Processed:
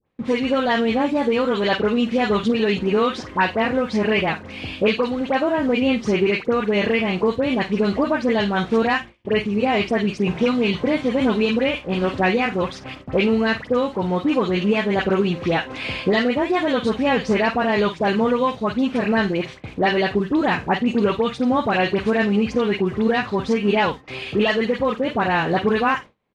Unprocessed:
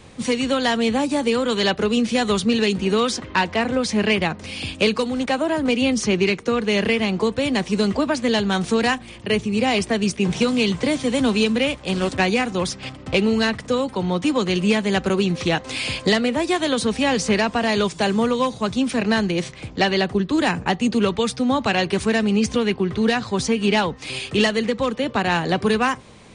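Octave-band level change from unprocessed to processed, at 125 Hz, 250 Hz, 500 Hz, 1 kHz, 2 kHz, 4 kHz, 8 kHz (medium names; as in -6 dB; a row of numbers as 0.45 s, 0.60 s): -1.0 dB, 0.0 dB, +1.5 dB, +1.5 dB, +0.5 dB, -4.0 dB, under -10 dB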